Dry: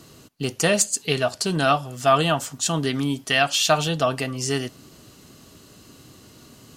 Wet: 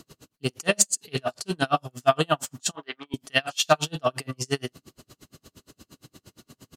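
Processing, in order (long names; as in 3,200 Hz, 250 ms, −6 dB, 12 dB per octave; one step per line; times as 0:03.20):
0:02.71–0:03.14: band-pass filter 680–2,300 Hz
double-tracking delay 45 ms −11.5 dB
tremolo with a sine in dB 8.6 Hz, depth 38 dB
level +2 dB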